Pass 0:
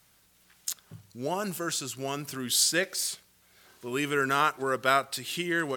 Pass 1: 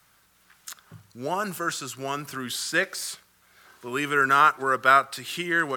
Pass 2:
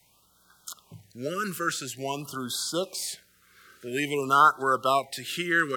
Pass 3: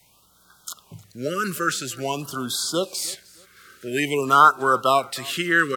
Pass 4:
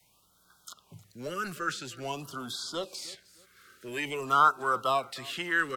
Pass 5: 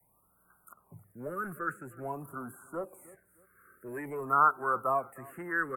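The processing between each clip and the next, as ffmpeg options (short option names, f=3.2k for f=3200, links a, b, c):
-filter_complex "[0:a]equalizer=f=1.3k:w=1.2:g=8.5,acrossover=split=150|1300|2900[a][b][c][d];[d]alimiter=limit=-24dB:level=0:latency=1[e];[a][b][c][e]amix=inputs=4:normalize=0"
-af "afftfilt=real='re*(1-between(b*sr/1024,750*pow(2300/750,0.5+0.5*sin(2*PI*0.49*pts/sr))/1.41,750*pow(2300/750,0.5+0.5*sin(2*PI*0.49*pts/sr))*1.41))':imag='im*(1-between(b*sr/1024,750*pow(2300/750,0.5+0.5*sin(2*PI*0.49*pts/sr))/1.41,750*pow(2300/750,0.5+0.5*sin(2*PI*0.49*pts/sr))*1.41))':win_size=1024:overlap=0.75"
-af "aecho=1:1:309|618:0.0708|0.0205,volume=5dB"
-filter_complex "[0:a]acrossover=split=120|490|6000[a][b][c][d];[b]asoftclip=type=hard:threshold=-32.5dB[e];[d]acompressor=threshold=-43dB:ratio=6[f];[a][e][c][f]amix=inputs=4:normalize=0,volume=-8dB"
-af "asuperstop=centerf=4300:order=8:qfactor=0.53,volume=-1.5dB"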